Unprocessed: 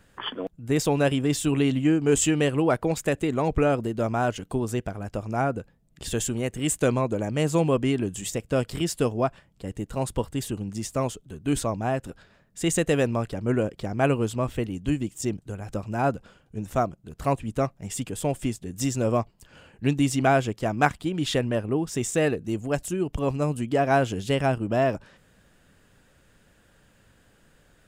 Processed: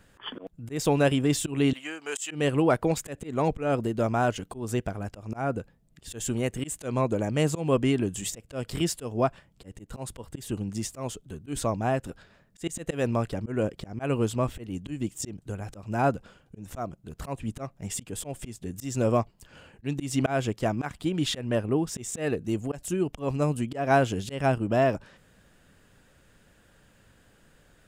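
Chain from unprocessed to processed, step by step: 1.73–2.31 HPF 990 Hz 12 dB/oct; auto swell 0.181 s

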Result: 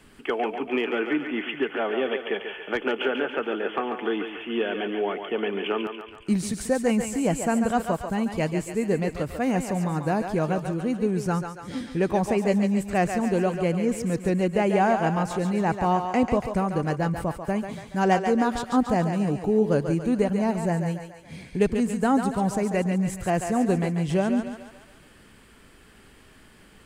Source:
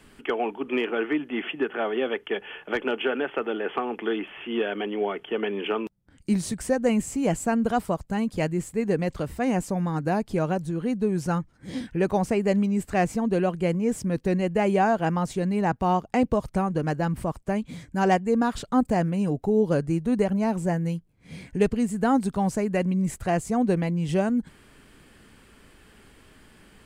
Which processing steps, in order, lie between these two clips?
thinning echo 0.141 s, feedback 57%, high-pass 420 Hz, level -6 dB

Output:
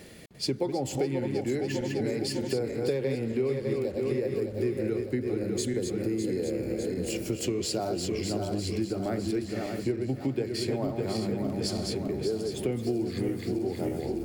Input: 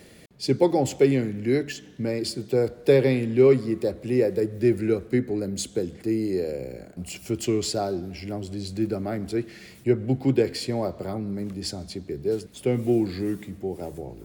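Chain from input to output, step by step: regenerating reverse delay 0.302 s, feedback 71%, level -6 dB; compressor 6:1, threshold -27 dBFS, peak gain reduction 15 dB; gain +1 dB

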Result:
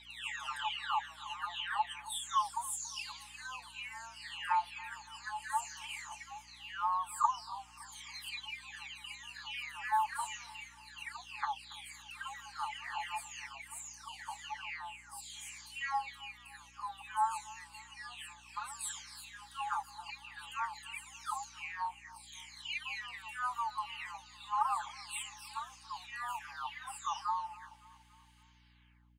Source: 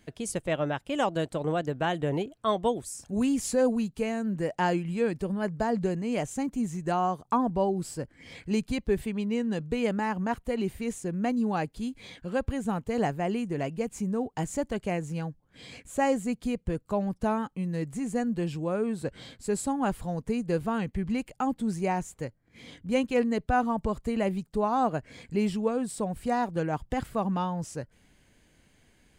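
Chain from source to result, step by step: spectral delay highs early, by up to 0.759 s; rippled Chebyshev high-pass 830 Hz, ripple 6 dB; feedback echo 0.281 s, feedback 52%, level -20 dB; hum 60 Hz, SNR 25 dB; gain +3.5 dB

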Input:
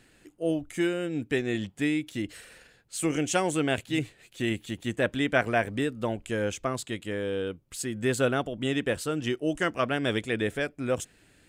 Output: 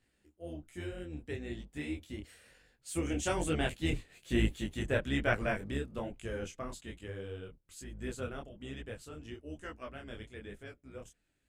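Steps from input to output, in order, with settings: octaver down 2 oct, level 0 dB; Doppler pass-by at 4.32, 9 m/s, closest 9 m; detuned doubles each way 39 cents

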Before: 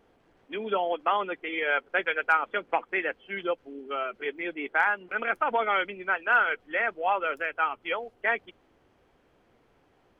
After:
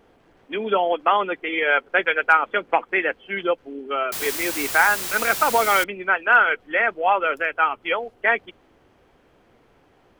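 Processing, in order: 4.12–5.84 requantised 6-bit, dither triangular; gain +7 dB

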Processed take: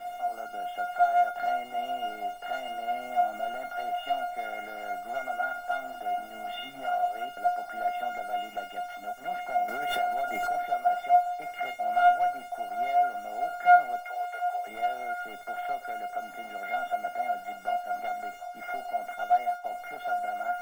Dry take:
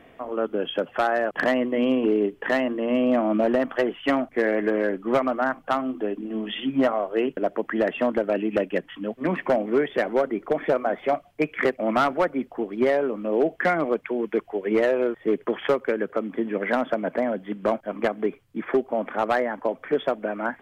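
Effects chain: per-bin compression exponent 0.6; 14.02–14.67 steep high-pass 480 Hz 36 dB/oct; 19.14–19.64 gate -19 dBFS, range -24 dB; bell 800 Hz +8.5 dB 0.89 oct; in parallel at +1 dB: limiter -14.5 dBFS, peak gain reduction 12 dB; on the sum: bit-crush 6-bit; resonator 710 Hz, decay 0.3 s, mix 100%; on a send: delay with a stepping band-pass 0.742 s, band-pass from 860 Hz, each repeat 0.7 oct, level -10.5 dB; 9.68–10.62 on the sum: backwards sustainer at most 24 dB/s

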